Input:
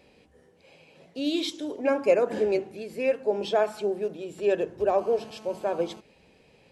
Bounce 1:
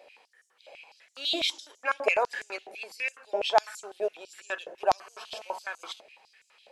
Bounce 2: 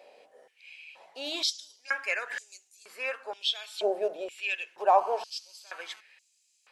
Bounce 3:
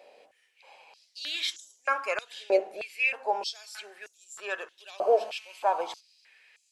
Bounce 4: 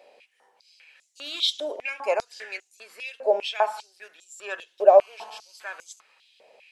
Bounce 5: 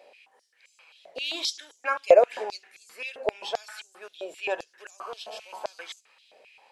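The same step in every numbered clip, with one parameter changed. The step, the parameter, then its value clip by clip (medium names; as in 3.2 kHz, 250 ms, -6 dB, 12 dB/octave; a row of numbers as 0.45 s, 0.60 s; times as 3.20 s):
step-sequenced high-pass, rate: 12 Hz, 2.1 Hz, 3.2 Hz, 5 Hz, 7.6 Hz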